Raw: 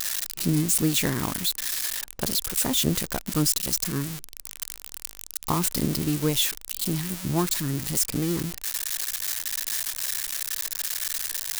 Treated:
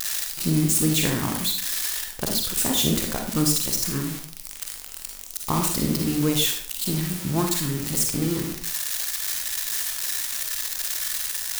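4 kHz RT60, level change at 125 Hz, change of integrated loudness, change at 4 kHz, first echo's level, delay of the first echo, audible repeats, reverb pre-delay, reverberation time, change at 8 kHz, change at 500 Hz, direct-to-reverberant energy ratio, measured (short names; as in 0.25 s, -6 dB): 0.45 s, +2.0 dB, +2.0 dB, +2.0 dB, none, none, none, 38 ms, 0.50 s, +2.0 dB, +2.0 dB, 2.0 dB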